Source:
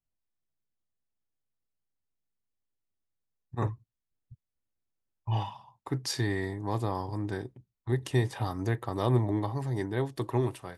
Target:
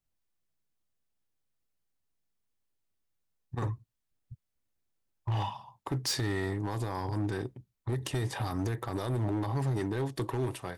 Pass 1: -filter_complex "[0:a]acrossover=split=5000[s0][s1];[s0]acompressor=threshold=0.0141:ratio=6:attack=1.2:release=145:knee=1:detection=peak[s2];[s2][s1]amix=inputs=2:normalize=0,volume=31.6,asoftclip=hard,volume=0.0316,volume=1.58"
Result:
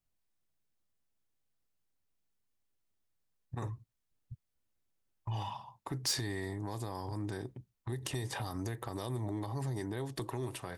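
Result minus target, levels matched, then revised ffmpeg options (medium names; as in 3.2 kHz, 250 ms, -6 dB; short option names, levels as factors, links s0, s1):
compression: peak gain reduction +7.5 dB
-filter_complex "[0:a]acrossover=split=5000[s0][s1];[s0]acompressor=threshold=0.0398:ratio=6:attack=1.2:release=145:knee=1:detection=peak[s2];[s2][s1]amix=inputs=2:normalize=0,volume=31.6,asoftclip=hard,volume=0.0316,volume=1.58"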